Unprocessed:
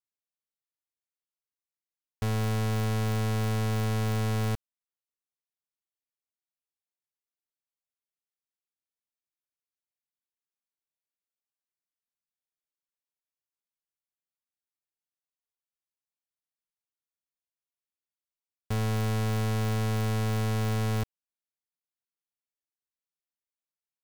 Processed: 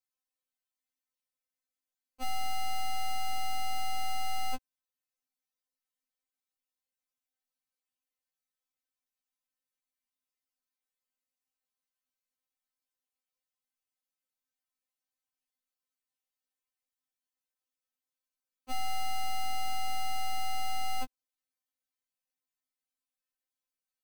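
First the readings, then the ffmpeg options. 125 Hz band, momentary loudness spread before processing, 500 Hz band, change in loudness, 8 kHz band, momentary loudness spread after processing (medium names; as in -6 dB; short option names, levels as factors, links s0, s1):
under -25 dB, 4 LU, -21.5 dB, -7.5 dB, -0.5 dB, 4 LU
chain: -af "afftfilt=real='re*3.46*eq(mod(b,12),0)':imag='im*3.46*eq(mod(b,12),0)':win_size=2048:overlap=0.75,volume=1.33"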